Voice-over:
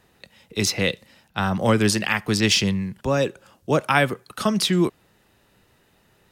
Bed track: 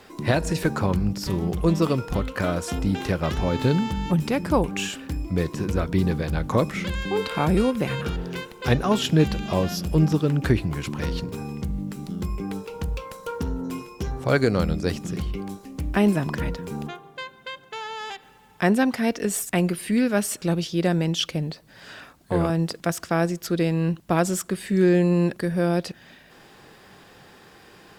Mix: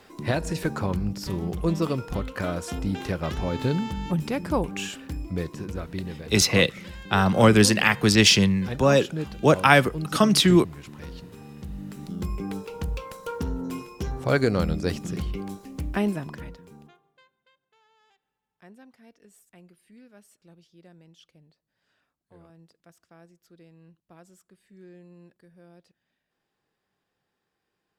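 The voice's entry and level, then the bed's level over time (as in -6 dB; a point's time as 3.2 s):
5.75 s, +2.5 dB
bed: 5.25 s -4 dB
6.15 s -12.5 dB
11.36 s -12.5 dB
12.22 s -1.5 dB
15.78 s -1.5 dB
17.59 s -30.5 dB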